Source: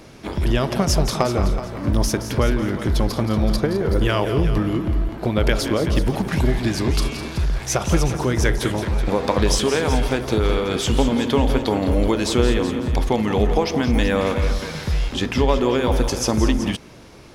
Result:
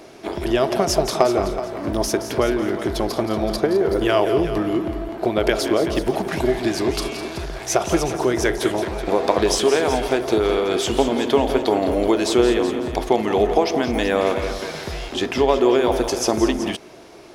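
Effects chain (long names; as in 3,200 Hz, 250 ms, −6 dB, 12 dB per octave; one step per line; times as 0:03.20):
low-shelf EQ 250 Hz −12 dB
hollow resonant body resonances 370/660 Hz, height 10 dB, ringing for 25 ms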